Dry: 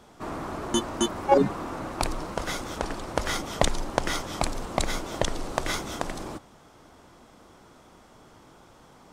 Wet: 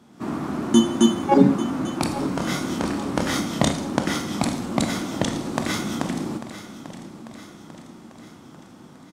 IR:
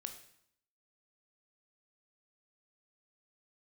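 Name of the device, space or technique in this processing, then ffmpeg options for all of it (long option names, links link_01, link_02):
far laptop microphone: -filter_complex "[1:a]atrim=start_sample=2205[link_01];[0:a][link_01]afir=irnorm=-1:irlink=0,highpass=160,dynaudnorm=framelen=110:gausssize=3:maxgain=5.5dB,lowshelf=frequency=350:width_type=q:width=1.5:gain=9,asettb=1/sr,asplit=3[link_02][link_03][link_04];[link_02]atrim=end=2.144[link_05];[link_03]atrim=start=2.14:end=3.73,asetpts=PTS-STARTPTS,afade=type=in:duration=0.004:curve=qsin,afade=type=out:start_time=1.586:duration=0.004:curve=qsin,asplit=2[link_06][link_07];[link_07]adelay=28,volume=-4.5dB[link_08];[link_06][link_08]amix=inputs=2:normalize=0,atrim=end_sample=70119[link_09];[link_04]atrim=start=3.726[link_10];[link_05][link_09]acrossfade=duration=0.004:curve1=hsin:curve2=qsin[link_11];[link_11][link_10]acrossfade=duration=0.004:curve1=qsin:curve2=hsin,aecho=1:1:844|1688|2532|3376|4220:0.2|0.106|0.056|0.0297|0.0157"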